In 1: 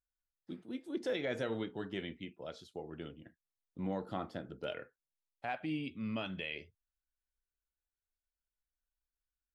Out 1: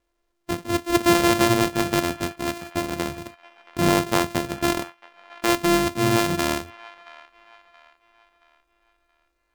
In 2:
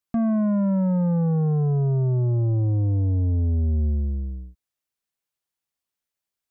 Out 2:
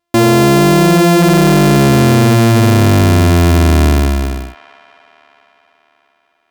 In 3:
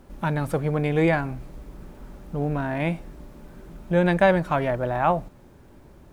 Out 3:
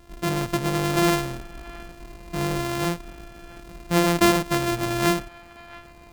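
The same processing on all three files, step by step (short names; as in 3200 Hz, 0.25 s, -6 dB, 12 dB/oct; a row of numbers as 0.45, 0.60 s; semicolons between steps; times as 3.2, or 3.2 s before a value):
sample sorter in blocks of 128 samples; band-limited delay 0.675 s, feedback 40%, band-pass 1600 Hz, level -17.5 dB; normalise peaks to -6 dBFS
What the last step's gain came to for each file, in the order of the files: +18.0, +12.5, 0.0 dB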